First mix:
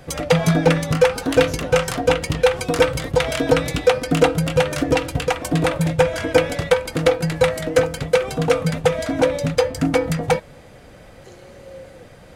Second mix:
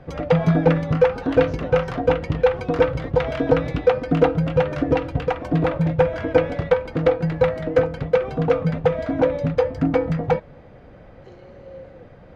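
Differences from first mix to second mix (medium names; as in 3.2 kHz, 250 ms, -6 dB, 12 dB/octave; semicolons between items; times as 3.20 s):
background: add peaking EQ 3.5 kHz -6 dB 2.2 oct; master: add distance through air 260 m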